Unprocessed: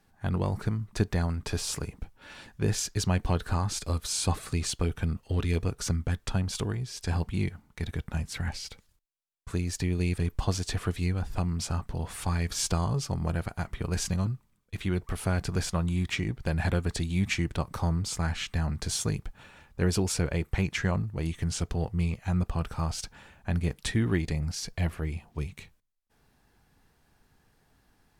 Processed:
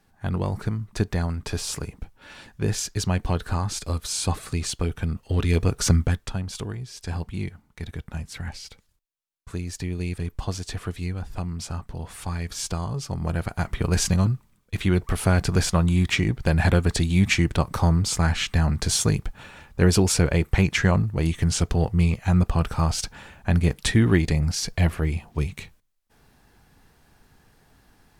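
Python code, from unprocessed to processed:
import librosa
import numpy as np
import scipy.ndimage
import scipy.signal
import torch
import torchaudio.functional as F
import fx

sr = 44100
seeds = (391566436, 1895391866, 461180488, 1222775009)

y = fx.gain(x, sr, db=fx.line((5.07, 2.5), (5.98, 10.5), (6.33, -1.0), (12.93, -1.0), (13.72, 8.0)))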